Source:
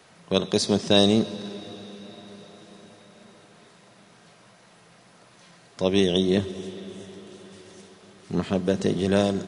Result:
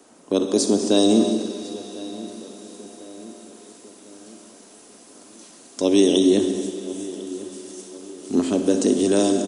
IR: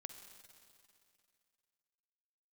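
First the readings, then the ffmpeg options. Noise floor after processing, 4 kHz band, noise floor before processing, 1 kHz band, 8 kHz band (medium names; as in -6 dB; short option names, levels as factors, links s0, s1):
-48 dBFS, -1.0 dB, -55 dBFS, +1.0 dB, +9.0 dB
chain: -filter_complex "[0:a]equalizer=f=125:t=o:w=1:g=-3,equalizer=f=250:t=o:w=1:g=7,equalizer=f=2000:t=o:w=1:g=-8,equalizer=f=4000:t=o:w=1:g=-6,equalizer=f=8000:t=o:w=1:g=8[s0];[1:a]atrim=start_sample=2205,afade=t=out:st=0.36:d=0.01,atrim=end_sample=16317[s1];[s0][s1]afir=irnorm=-1:irlink=0,asplit=2[s2][s3];[s3]alimiter=limit=0.126:level=0:latency=1,volume=1.19[s4];[s2][s4]amix=inputs=2:normalize=0,lowshelf=f=210:t=q:w=3:g=-7,asplit=2[s5][s6];[s6]adelay=1050,lowpass=f=2000:p=1,volume=0.126,asplit=2[s7][s8];[s8]adelay=1050,lowpass=f=2000:p=1,volume=0.54,asplit=2[s9][s10];[s10]adelay=1050,lowpass=f=2000:p=1,volume=0.54,asplit=2[s11][s12];[s12]adelay=1050,lowpass=f=2000:p=1,volume=0.54,asplit=2[s13][s14];[s14]adelay=1050,lowpass=f=2000:p=1,volume=0.54[s15];[s5][s7][s9][s11][s13][s15]amix=inputs=6:normalize=0,acrossover=split=610|2200[s16][s17][s18];[s18]dynaudnorm=f=260:g=9:m=2.51[s19];[s16][s17][s19]amix=inputs=3:normalize=0"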